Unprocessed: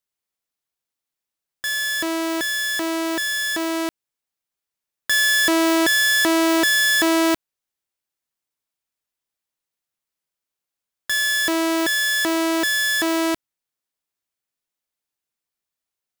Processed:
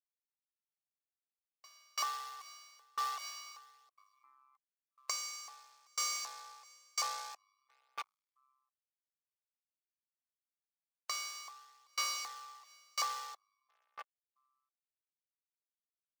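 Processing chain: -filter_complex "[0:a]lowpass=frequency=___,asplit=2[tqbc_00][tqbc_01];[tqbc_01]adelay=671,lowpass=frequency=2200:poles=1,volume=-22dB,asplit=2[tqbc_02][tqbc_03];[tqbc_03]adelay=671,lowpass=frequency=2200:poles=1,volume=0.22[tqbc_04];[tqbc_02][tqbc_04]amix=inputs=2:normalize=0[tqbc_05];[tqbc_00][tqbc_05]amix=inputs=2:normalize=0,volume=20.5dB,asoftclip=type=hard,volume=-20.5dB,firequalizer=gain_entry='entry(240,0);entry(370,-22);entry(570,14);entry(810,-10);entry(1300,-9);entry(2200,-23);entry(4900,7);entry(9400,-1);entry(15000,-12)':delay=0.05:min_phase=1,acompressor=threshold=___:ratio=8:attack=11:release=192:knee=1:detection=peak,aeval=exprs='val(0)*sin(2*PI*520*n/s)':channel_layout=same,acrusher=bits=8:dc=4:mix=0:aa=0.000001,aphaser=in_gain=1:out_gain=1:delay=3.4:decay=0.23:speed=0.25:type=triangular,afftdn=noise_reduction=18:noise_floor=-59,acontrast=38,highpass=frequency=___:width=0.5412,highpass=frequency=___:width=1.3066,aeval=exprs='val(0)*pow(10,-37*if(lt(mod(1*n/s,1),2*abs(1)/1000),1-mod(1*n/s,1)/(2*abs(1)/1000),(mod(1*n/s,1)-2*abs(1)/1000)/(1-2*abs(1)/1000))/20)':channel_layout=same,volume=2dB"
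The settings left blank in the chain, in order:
2900, -34dB, 570, 570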